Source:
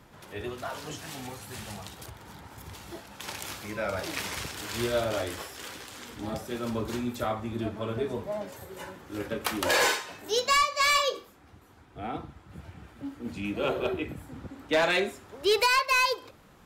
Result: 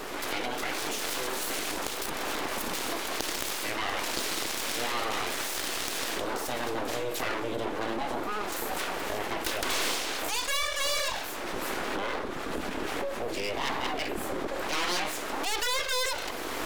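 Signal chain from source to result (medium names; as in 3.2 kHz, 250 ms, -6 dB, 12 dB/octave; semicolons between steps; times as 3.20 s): recorder AGC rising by 40 dB/s; dynamic bell 2.2 kHz, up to +5 dB, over -41 dBFS, Q 0.95; full-wave rectifier; resonant low shelf 220 Hz -9.5 dB, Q 1.5; level flattener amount 70%; trim -5 dB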